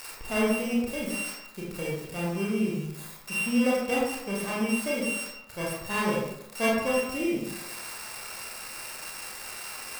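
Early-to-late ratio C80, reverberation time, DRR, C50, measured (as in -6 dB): 4.0 dB, 0.85 s, -5.5 dB, 0.5 dB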